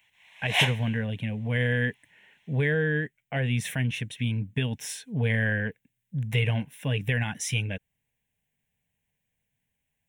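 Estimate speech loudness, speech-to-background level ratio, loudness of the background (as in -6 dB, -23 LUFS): -28.5 LUFS, -3.0 dB, -25.5 LUFS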